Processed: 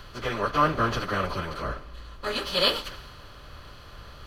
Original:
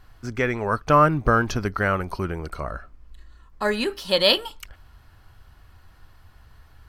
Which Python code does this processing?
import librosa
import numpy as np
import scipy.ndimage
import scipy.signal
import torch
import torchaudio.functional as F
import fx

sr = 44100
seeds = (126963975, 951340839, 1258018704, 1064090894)

y = fx.bin_compress(x, sr, power=0.4)
y = fx.stretch_vocoder_free(y, sr, factor=0.62)
y = fx.band_widen(y, sr, depth_pct=70)
y = y * librosa.db_to_amplitude(-7.5)